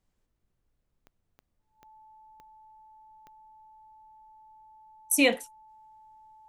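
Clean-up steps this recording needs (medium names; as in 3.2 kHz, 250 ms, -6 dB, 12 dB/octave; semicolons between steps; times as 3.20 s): de-click; band-stop 870 Hz, Q 30; expander -69 dBFS, range -21 dB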